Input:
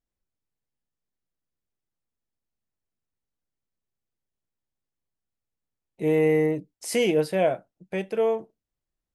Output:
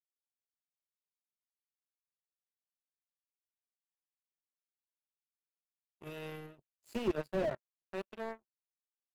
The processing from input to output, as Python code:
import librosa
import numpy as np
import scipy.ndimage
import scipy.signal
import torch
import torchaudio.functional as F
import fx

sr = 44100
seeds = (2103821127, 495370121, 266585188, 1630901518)

y = fx.ripple_eq(x, sr, per_octave=1.4, db=14)
y = fx.power_curve(y, sr, exponent=3.0)
y = fx.slew_limit(y, sr, full_power_hz=11.0)
y = y * librosa.db_to_amplitude(4.5)